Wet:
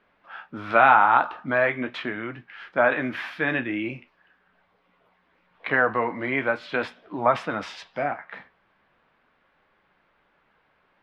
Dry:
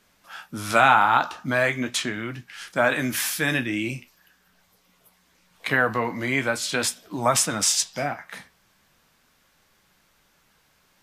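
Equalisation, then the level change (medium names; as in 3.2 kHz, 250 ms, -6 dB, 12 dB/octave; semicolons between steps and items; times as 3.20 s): distance through air 350 m; tone controls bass -10 dB, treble -12 dB; +3.0 dB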